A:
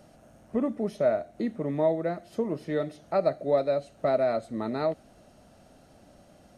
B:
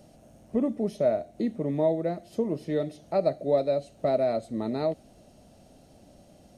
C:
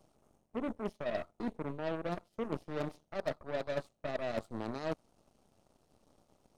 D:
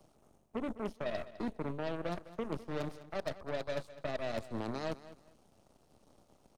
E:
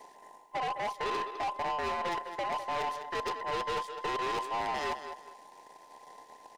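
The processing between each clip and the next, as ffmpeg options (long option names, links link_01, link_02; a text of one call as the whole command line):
ffmpeg -i in.wav -af "equalizer=frequency=1400:width_type=o:width=1.2:gain=-10,volume=2dB" out.wav
ffmpeg -i in.wav -af "areverse,acompressor=threshold=-32dB:ratio=8,areverse,aeval=exprs='0.0531*(cos(1*acos(clip(val(0)/0.0531,-1,1)))-cos(1*PI/2))+0.0119*(cos(3*acos(clip(val(0)/0.0531,-1,1)))-cos(3*PI/2))+0.00168*(cos(7*acos(clip(val(0)/0.0531,-1,1)))-cos(7*PI/2))+0.00376*(cos(8*acos(clip(val(0)/0.0531,-1,1)))-cos(8*PI/2))':channel_layout=same,volume=1dB" out.wav
ffmpeg -i in.wav -filter_complex "[0:a]acrossover=split=120|3000[link_01][link_02][link_03];[link_02]acompressor=threshold=-37dB:ratio=6[link_04];[link_01][link_04][link_03]amix=inputs=3:normalize=0,aecho=1:1:206|412:0.158|0.0365,volume=3dB" out.wav
ffmpeg -i in.wav -filter_complex "[0:a]afftfilt=real='real(if(between(b,1,1008),(2*floor((b-1)/48)+1)*48-b,b),0)':imag='imag(if(between(b,1,1008),(2*floor((b-1)/48)+1)*48-b,b),0)*if(between(b,1,1008),-1,1)':win_size=2048:overlap=0.75,asplit=2[link_01][link_02];[link_02]highpass=frequency=720:poles=1,volume=23dB,asoftclip=type=tanh:threshold=-22dB[link_03];[link_01][link_03]amix=inputs=2:normalize=0,lowpass=frequency=6500:poles=1,volume=-6dB,volume=-3.5dB" out.wav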